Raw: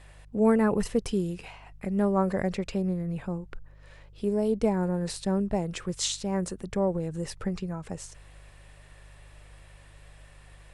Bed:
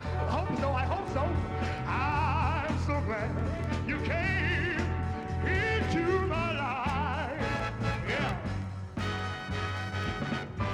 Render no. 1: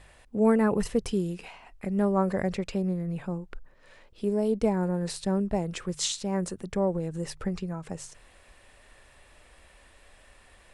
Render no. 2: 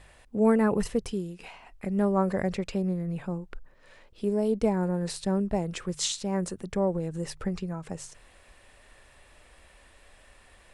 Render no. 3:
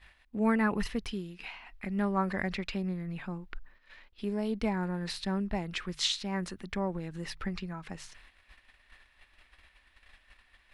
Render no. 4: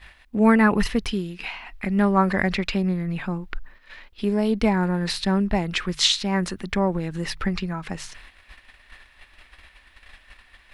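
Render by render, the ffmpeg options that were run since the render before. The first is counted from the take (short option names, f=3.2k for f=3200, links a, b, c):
-af "bandreject=f=50:t=h:w=4,bandreject=f=100:t=h:w=4,bandreject=f=150:t=h:w=4"
-filter_complex "[0:a]asplit=2[a][b];[a]atrim=end=1.4,asetpts=PTS-STARTPTS,afade=t=out:st=0.83:d=0.57:silence=0.375837[c];[b]atrim=start=1.4,asetpts=PTS-STARTPTS,afade=t=in:d=0.004:c=hsin:silence=0.375837[d];[c][d]concat=n=2:v=0:a=1"
-af "agate=range=-10dB:threshold=-53dB:ratio=16:detection=peak,equalizer=f=125:t=o:w=1:g=-9,equalizer=f=500:t=o:w=1:g=-11,equalizer=f=2k:t=o:w=1:g=5,equalizer=f=4k:t=o:w=1:g=5,equalizer=f=8k:t=o:w=1:g=-12"
-af "volume=10.5dB"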